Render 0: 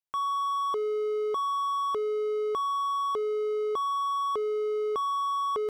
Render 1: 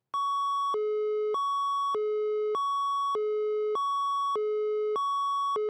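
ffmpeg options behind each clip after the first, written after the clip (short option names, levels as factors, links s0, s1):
-af "anlmdn=1,highpass=f=110:w=0.5412,highpass=f=110:w=1.3066,acompressor=mode=upward:threshold=0.00251:ratio=2.5"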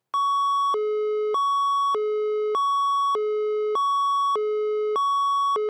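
-af "lowshelf=f=240:g=-11,volume=2.24"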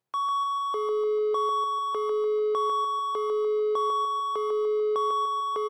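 -af "aecho=1:1:148|296|444|592|740|888:0.562|0.27|0.13|0.0622|0.0299|0.0143,volume=0.562"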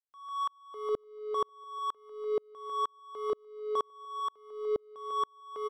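-af "aeval=exprs='val(0)*pow(10,-38*if(lt(mod(-2.1*n/s,1),2*abs(-2.1)/1000),1-mod(-2.1*n/s,1)/(2*abs(-2.1)/1000),(mod(-2.1*n/s,1)-2*abs(-2.1)/1000)/(1-2*abs(-2.1)/1000))/20)':c=same"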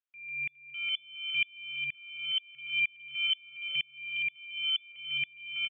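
-filter_complex "[0:a]afftfilt=real='re*pow(10,6/40*sin(2*PI*(1*log(max(b,1)*sr/1024/100)/log(2)-(1.5)*(pts-256)/sr)))':imag='im*pow(10,6/40*sin(2*PI*(1*log(max(b,1)*sr/1024/100)/log(2)-(1.5)*(pts-256)/sr)))':win_size=1024:overlap=0.75,asplit=2[s0][s1];[s1]adelay=413,lowpass=f=2500:p=1,volume=0.473,asplit=2[s2][s3];[s3]adelay=413,lowpass=f=2500:p=1,volume=0.52,asplit=2[s4][s5];[s5]adelay=413,lowpass=f=2500:p=1,volume=0.52,asplit=2[s6][s7];[s7]adelay=413,lowpass=f=2500:p=1,volume=0.52,asplit=2[s8][s9];[s9]adelay=413,lowpass=f=2500:p=1,volume=0.52,asplit=2[s10][s11];[s11]adelay=413,lowpass=f=2500:p=1,volume=0.52[s12];[s0][s2][s4][s6][s8][s10][s12]amix=inputs=7:normalize=0,lowpass=f=3000:t=q:w=0.5098,lowpass=f=3000:t=q:w=0.6013,lowpass=f=3000:t=q:w=0.9,lowpass=f=3000:t=q:w=2.563,afreqshift=-3500"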